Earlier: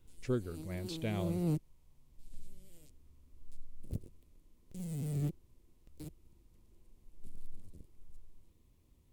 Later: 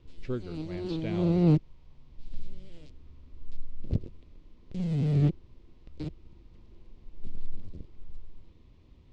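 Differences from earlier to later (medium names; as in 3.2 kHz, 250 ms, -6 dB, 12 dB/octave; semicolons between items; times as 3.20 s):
background +11.0 dB; master: add low-pass 4.6 kHz 24 dB/octave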